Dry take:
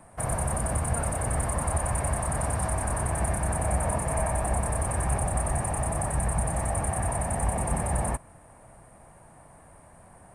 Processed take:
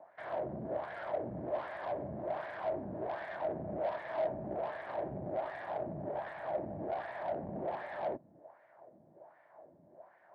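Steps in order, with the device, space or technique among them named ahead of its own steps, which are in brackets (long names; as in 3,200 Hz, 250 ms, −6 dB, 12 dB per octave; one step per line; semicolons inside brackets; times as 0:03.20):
wah-wah guitar rig (LFO wah 1.3 Hz 200–1,900 Hz, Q 2.4; tube saturation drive 36 dB, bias 0.45; loudspeaker in its box 110–4,500 Hz, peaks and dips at 220 Hz −3 dB, 350 Hz +7 dB, 610 Hz +10 dB, 1,200 Hz −7 dB, 2,600 Hz −6 dB)
level +1 dB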